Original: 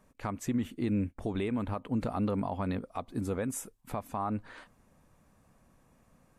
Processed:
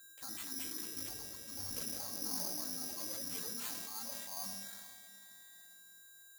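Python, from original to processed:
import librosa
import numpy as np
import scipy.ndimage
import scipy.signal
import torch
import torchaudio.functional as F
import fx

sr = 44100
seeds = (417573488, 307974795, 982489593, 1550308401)

y = fx.spec_expand(x, sr, power=1.6)
y = fx.doppler_pass(y, sr, speed_mps=33, closest_m=9.6, pass_at_s=1.28)
y = fx.highpass(y, sr, hz=680.0, slope=6)
y = fx.over_compress(y, sr, threshold_db=-54.0, ratio=-1.0)
y = fx.chorus_voices(y, sr, voices=6, hz=0.55, base_ms=15, depth_ms=4.4, mix_pct=50)
y = y + 10.0 ** (-66.0 / 20.0) * np.sin(2.0 * np.pi * 1600.0 * np.arange(len(y)) / sr)
y = fx.echo_pitch(y, sr, ms=278, semitones=3, count=3, db_per_echo=-3.0)
y = fx.echo_diffused(y, sr, ms=490, feedback_pct=44, wet_db=-15)
y = fx.room_shoebox(y, sr, seeds[0], volume_m3=3100.0, walls='furnished', distance_m=2.2)
y = (np.kron(y[::8], np.eye(8)[0]) * 8)[:len(y)]
y = fx.sustainer(y, sr, db_per_s=25.0)
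y = F.gain(torch.from_numpy(y), -1.0).numpy()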